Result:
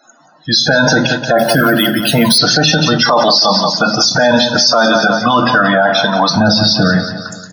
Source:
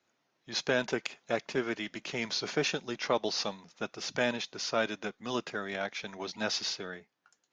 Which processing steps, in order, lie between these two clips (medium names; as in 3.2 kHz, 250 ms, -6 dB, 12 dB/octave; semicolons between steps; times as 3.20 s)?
6.30–6.94 s: RIAA curve playback; high-pass 110 Hz 12 dB/octave; treble shelf 3 kHz +5 dB; loudest bins only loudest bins 32; static phaser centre 950 Hz, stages 4; feedback delay 177 ms, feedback 52%, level -14 dB; reverberation RT60 0.45 s, pre-delay 3 ms, DRR 6 dB; 1.38–2.38 s: careless resampling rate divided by 3×, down none, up hold; loudness maximiser +36 dB; trim -1 dB